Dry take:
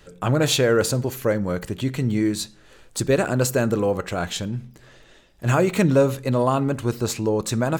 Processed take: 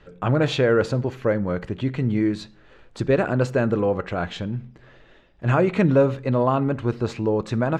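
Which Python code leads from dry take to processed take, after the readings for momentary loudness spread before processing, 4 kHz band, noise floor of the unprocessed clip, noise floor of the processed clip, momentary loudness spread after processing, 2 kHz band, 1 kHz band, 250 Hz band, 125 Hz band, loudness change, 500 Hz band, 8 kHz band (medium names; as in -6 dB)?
10 LU, -7.0 dB, -52 dBFS, -52 dBFS, 10 LU, -1.0 dB, 0.0 dB, 0.0 dB, 0.0 dB, -0.5 dB, 0.0 dB, under -15 dB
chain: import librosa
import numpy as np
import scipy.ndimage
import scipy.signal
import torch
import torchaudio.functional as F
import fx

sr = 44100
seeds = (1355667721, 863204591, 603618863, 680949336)

y = scipy.signal.sosfilt(scipy.signal.butter(2, 2700.0, 'lowpass', fs=sr, output='sos'), x)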